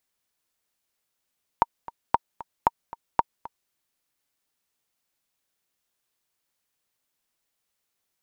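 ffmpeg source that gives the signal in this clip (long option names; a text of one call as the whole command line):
ffmpeg -f lavfi -i "aevalsrc='pow(10,(-4.5-18.5*gte(mod(t,2*60/229),60/229))/20)*sin(2*PI*931*mod(t,60/229))*exp(-6.91*mod(t,60/229)/0.03)':duration=2.09:sample_rate=44100" out.wav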